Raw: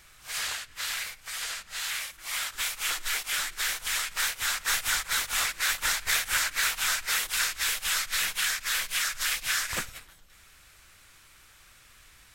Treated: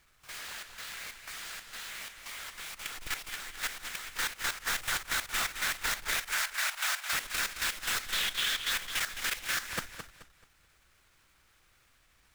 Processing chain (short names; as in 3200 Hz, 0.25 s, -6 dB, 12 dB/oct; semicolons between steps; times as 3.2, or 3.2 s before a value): half-waves squared off; 6.22–7.13 steep high-pass 600 Hz 72 dB/oct; 8.07–8.69 bell 3400 Hz +8 dB -> +14.5 dB 0.42 oct; level quantiser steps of 12 dB; warbling echo 0.216 s, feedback 30%, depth 75 cents, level -9 dB; gain -6.5 dB